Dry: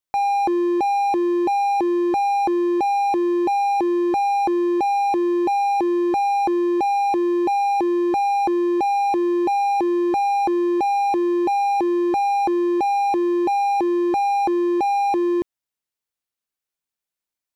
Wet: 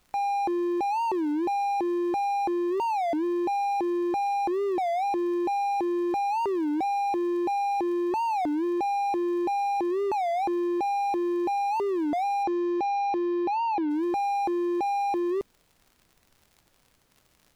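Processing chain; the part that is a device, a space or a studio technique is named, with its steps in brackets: warped LP (warped record 33 1/3 rpm, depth 250 cents; crackle 77 per s -38 dBFS; pink noise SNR 40 dB); 12.43–13.89 s: low-pass 7.2 kHz -> 4.2 kHz 24 dB/octave; trim -7 dB

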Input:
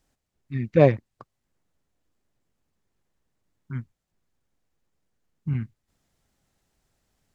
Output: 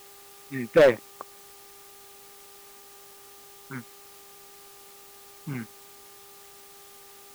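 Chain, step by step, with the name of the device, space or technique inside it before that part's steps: aircraft radio (band-pass 370–2500 Hz; hard clipper -19 dBFS, distortion -6 dB; mains buzz 400 Hz, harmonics 3, -63 dBFS -3 dB/octave; white noise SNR 19 dB); trim +7 dB

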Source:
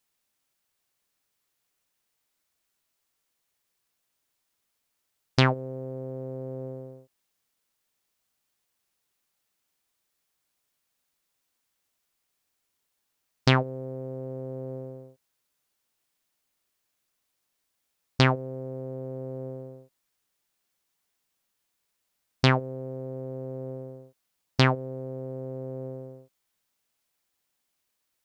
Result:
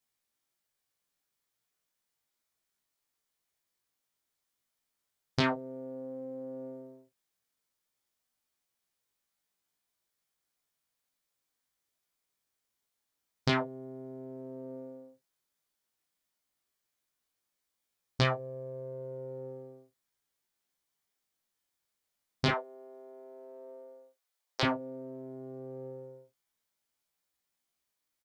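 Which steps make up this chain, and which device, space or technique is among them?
22.48–24.63 s: high-pass 440 Hz 24 dB/octave; band-stop 2.7 kHz, Q 18; double-tracked vocal (doubling 34 ms -11 dB; chorus 0.11 Hz, delay 17 ms, depth 3.1 ms); trim -3 dB

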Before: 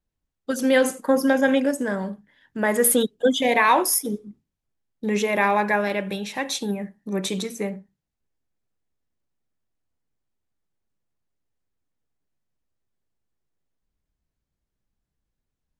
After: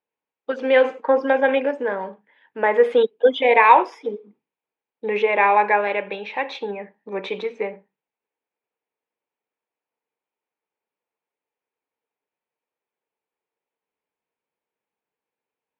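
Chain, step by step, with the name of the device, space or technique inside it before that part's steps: phone earpiece (cabinet simulation 390–3200 Hz, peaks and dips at 460 Hz +9 dB, 900 Hz +9 dB, 2.4 kHz +7 dB)

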